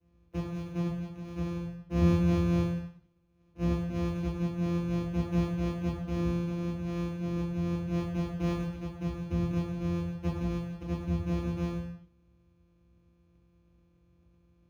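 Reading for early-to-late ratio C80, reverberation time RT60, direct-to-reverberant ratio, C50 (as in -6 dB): 5.0 dB, not exponential, -13.5 dB, 2.0 dB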